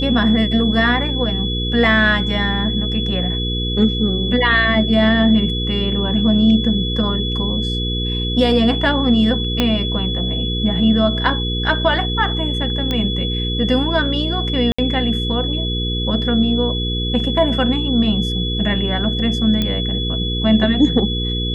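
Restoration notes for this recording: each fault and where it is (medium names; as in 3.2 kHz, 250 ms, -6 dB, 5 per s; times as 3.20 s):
hum 60 Hz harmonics 8 -22 dBFS
whine 3.4 kHz -23 dBFS
9.60 s: pop -3 dBFS
12.91 s: pop -8 dBFS
14.72–14.79 s: dropout 65 ms
19.62 s: pop -7 dBFS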